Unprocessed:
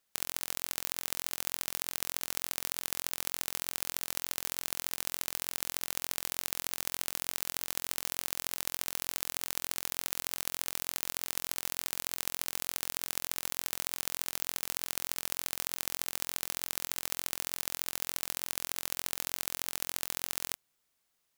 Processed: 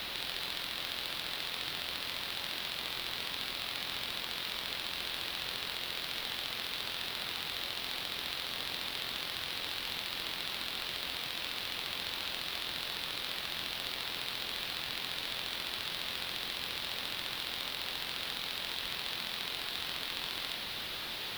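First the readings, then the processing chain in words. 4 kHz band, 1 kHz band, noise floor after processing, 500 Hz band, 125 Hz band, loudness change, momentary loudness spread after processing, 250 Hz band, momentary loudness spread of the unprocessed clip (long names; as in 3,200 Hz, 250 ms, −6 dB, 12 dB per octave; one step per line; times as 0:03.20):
+6.5 dB, +1.5 dB, −40 dBFS, +1.0 dB, +0.5 dB, −1.5 dB, 0 LU, +0.5 dB, 1 LU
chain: bit-depth reduction 6 bits, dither triangular
high shelf with overshoot 5,200 Hz −11.5 dB, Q 3
tube saturation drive 18 dB, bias 0.35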